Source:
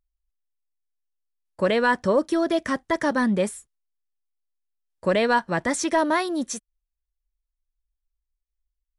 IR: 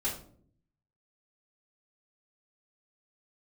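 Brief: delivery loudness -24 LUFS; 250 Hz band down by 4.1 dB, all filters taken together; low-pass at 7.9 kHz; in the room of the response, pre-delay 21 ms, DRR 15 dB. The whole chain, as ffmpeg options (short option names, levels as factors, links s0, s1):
-filter_complex "[0:a]lowpass=7900,equalizer=f=250:t=o:g=-5.5,asplit=2[s0][s1];[1:a]atrim=start_sample=2205,adelay=21[s2];[s1][s2]afir=irnorm=-1:irlink=0,volume=0.1[s3];[s0][s3]amix=inputs=2:normalize=0,volume=1.06"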